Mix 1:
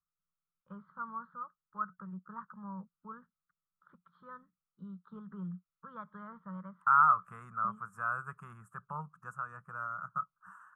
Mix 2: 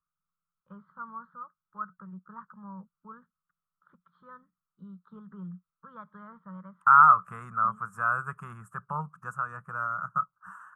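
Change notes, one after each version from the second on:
second voice +7.5 dB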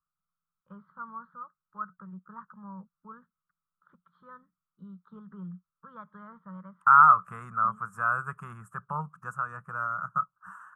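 no change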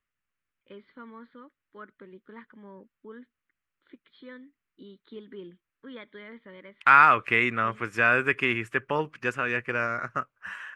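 second voice +8.5 dB; master: remove FFT filter 110 Hz 0 dB, 180 Hz +14 dB, 280 Hz -24 dB, 1.3 kHz +13 dB, 2.1 kHz -28 dB, 4.6 kHz -22 dB, 8 kHz +5 dB

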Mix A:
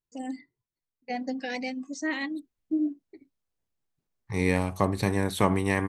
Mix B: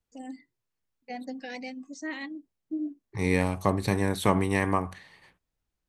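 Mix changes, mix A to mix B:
first voice -5.5 dB; second voice: entry -1.15 s

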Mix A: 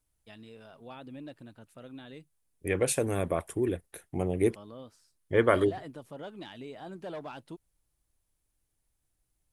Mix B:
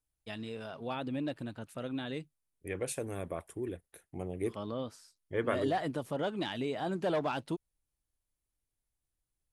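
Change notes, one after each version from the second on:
first voice +8.5 dB; second voice -9.0 dB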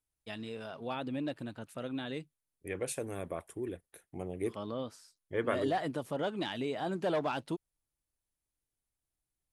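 master: add bass shelf 93 Hz -6 dB

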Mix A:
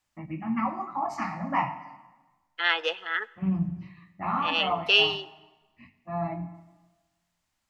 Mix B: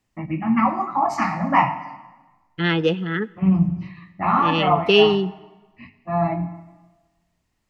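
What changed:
first voice +9.5 dB; second voice: remove high-pass 650 Hz 24 dB/octave

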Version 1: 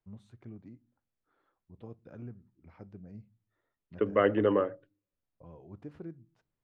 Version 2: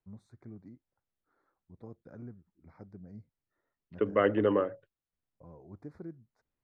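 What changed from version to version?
first voice: add Butterworth band-stop 2.9 kHz, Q 1.6; reverb: off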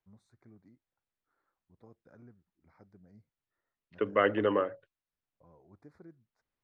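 first voice -6.5 dB; master: add tilt shelf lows -4.5 dB, about 640 Hz

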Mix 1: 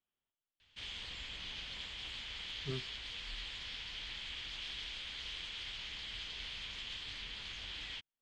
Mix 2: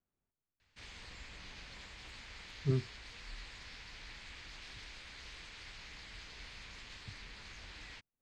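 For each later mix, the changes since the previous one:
speech: add bass shelf 440 Hz +12 dB; master: add peaking EQ 3.2 kHz -15 dB 0.51 oct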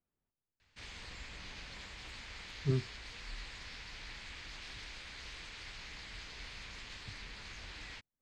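reverb: on, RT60 2.7 s

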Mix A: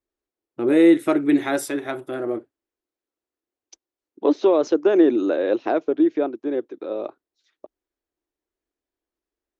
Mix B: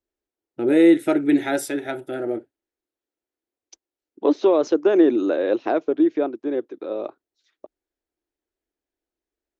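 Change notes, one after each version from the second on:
first voice: add Butterworth band-stop 1.1 kHz, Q 3.5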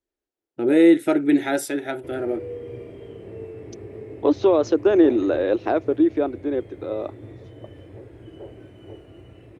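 background: unmuted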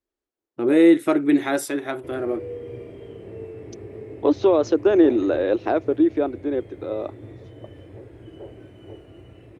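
first voice: remove Butterworth band-stop 1.1 kHz, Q 3.5

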